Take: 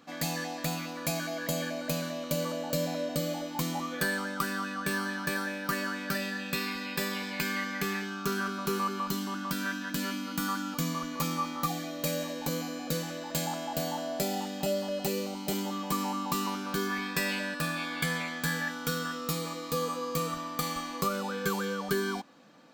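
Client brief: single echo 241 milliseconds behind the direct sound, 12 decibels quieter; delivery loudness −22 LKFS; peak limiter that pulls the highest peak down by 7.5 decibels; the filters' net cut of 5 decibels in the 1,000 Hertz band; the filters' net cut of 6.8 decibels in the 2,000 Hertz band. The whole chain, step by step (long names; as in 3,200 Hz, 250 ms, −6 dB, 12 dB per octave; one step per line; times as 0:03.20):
parametric band 1,000 Hz −4 dB
parametric band 2,000 Hz −7.5 dB
brickwall limiter −25 dBFS
single-tap delay 241 ms −12 dB
level +14 dB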